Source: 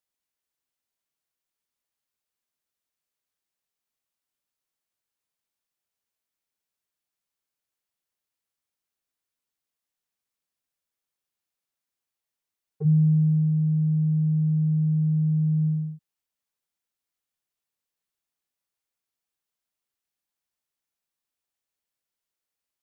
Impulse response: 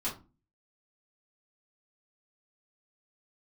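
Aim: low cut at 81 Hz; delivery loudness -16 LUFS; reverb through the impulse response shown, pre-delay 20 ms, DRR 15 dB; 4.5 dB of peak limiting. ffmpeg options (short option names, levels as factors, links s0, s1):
-filter_complex "[0:a]highpass=81,alimiter=limit=0.106:level=0:latency=1,asplit=2[s0][s1];[1:a]atrim=start_sample=2205,adelay=20[s2];[s1][s2]afir=irnorm=-1:irlink=0,volume=0.112[s3];[s0][s3]amix=inputs=2:normalize=0,volume=2.82"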